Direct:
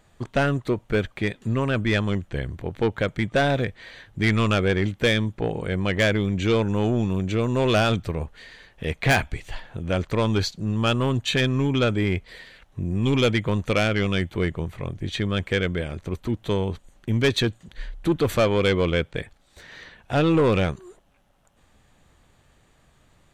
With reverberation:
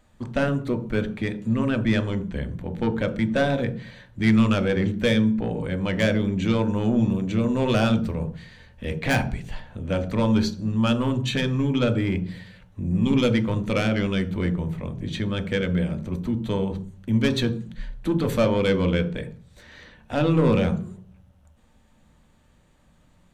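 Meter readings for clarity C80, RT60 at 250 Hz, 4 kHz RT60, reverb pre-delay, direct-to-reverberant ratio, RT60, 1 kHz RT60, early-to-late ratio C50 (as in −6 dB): 17.5 dB, 0.70 s, 0.40 s, 3 ms, 5.5 dB, 0.40 s, 0.45 s, 13.0 dB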